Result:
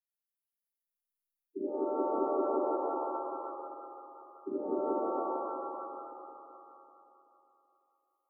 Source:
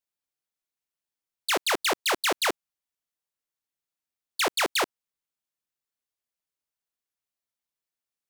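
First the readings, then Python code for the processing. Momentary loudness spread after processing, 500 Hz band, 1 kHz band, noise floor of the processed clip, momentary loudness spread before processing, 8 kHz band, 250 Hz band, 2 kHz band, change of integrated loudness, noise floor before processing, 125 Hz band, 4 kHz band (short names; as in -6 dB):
18 LU, +1.5 dB, -3.0 dB, under -85 dBFS, 10 LU, under -40 dB, +3.5 dB, under -35 dB, -9.0 dB, under -85 dBFS, n/a, under -40 dB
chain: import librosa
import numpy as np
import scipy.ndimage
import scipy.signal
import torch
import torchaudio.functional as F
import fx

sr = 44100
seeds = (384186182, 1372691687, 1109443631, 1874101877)

y = fx.reverse_delay_fb(x, sr, ms=191, feedback_pct=66, wet_db=-8.5)
y = fx.high_shelf(y, sr, hz=2200.0, db=5.0)
y = fx.spec_topn(y, sr, count=64)
y = fx.brickwall_bandstop(y, sr, low_hz=410.0, high_hz=9900.0)
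y = fx.rev_shimmer(y, sr, seeds[0], rt60_s=2.2, semitones=7, shimmer_db=-2, drr_db=-11.5)
y = y * librosa.db_to_amplitude(-8.0)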